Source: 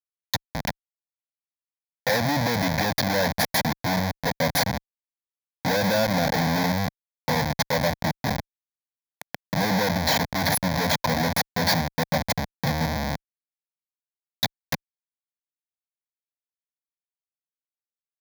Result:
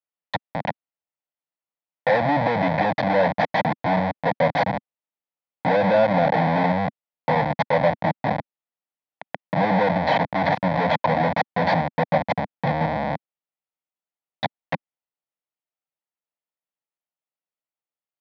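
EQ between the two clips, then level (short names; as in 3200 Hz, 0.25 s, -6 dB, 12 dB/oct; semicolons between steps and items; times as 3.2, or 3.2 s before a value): speaker cabinet 200–2500 Hz, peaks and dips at 240 Hz -8 dB, 390 Hz -10 dB, 1100 Hz -5 dB, 1600 Hz -9 dB, 2300 Hz -6 dB; +8.0 dB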